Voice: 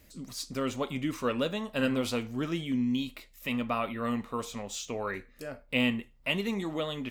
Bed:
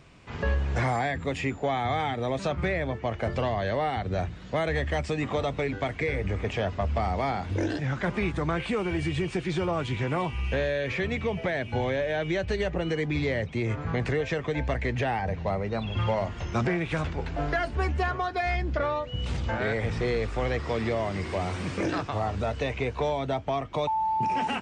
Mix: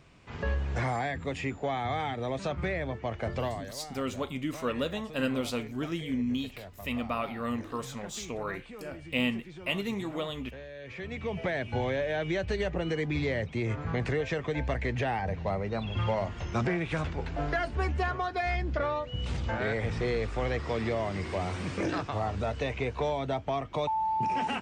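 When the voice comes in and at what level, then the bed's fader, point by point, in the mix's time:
3.40 s, −1.5 dB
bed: 0:03.47 −4 dB
0:03.74 −17.5 dB
0:10.69 −17.5 dB
0:11.41 −2.5 dB

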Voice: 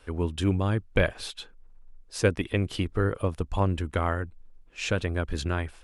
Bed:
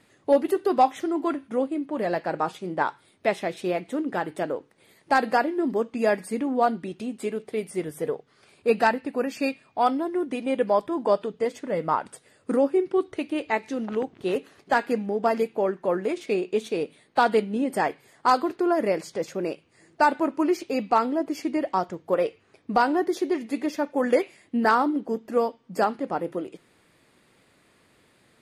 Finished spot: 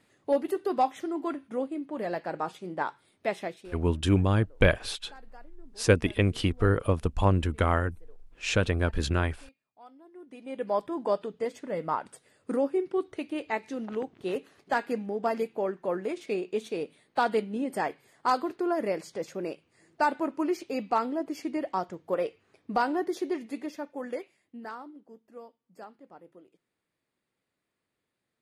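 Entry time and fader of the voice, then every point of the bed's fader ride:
3.65 s, +2.0 dB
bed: 0:03.47 −6 dB
0:03.87 −30 dB
0:09.90 −30 dB
0:10.76 −5.5 dB
0:23.33 −5.5 dB
0:24.96 −23 dB

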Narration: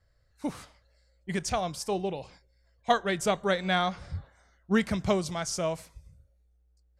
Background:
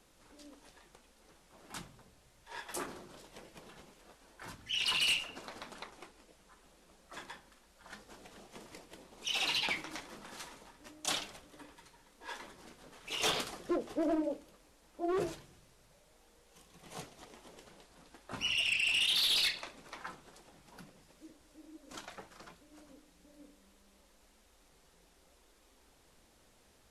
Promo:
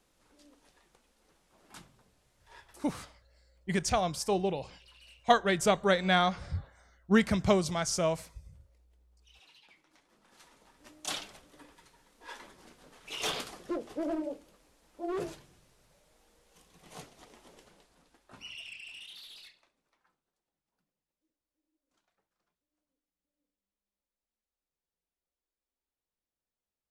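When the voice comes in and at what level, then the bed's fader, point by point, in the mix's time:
2.40 s, +1.0 dB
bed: 0:02.47 −5.5 dB
0:03.09 −27.5 dB
0:09.69 −27.5 dB
0:10.87 −1.5 dB
0:17.54 −1.5 dB
0:20.27 −31.5 dB

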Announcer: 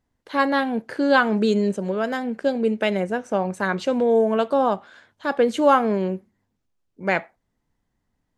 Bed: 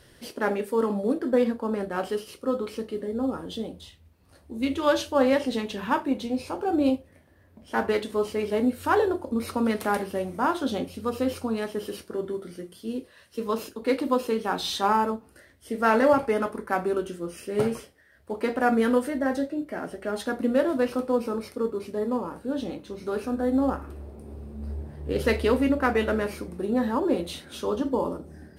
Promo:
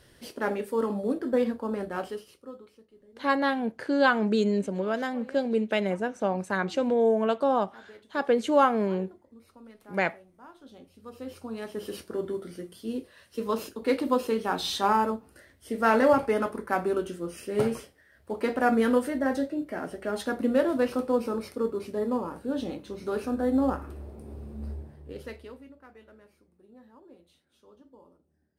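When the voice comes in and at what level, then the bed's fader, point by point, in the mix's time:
2.90 s, −4.5 dB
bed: 0:01.96 −3 dB
0:02.86 −25.5 dB
0:10.52 −25.5 dB
0:11.97 −1 dB
0:24.65 −1 dB
0:25.75 −29 dB

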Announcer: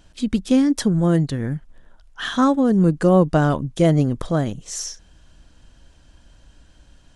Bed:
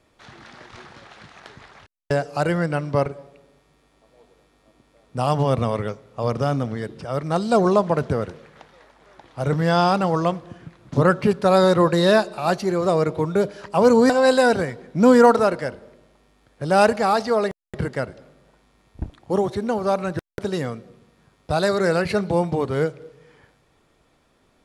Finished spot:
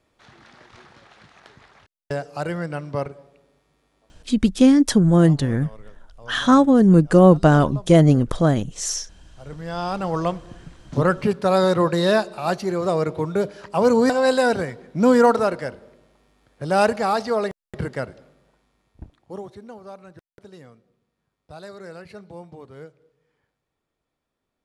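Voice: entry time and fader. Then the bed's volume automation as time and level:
4.10 s, +3.0 dB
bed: 0:04.05 −5.5 dB
0:04.61 −20.5 dB
0:09.26 −20.5 dB
0:10.19 −2 dB
0:18.11 −2 dB
0:19.96 −19 dB

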